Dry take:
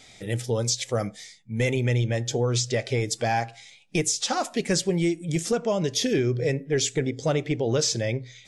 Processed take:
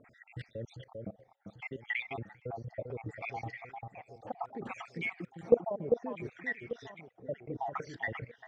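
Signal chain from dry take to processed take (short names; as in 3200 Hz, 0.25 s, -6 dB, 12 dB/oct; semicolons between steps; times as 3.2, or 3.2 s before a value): random spectral dropouts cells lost 69%; HPF 75 Hz 6 dB/oct; level quantiser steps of 21 dB; echo with dull and thin repeats by turns 0.396 s, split 1800 Hz, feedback 63%, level -6 dB; LFO low-pass sine 0.65 Hz 690–2100 Hz; gain +2.5 dB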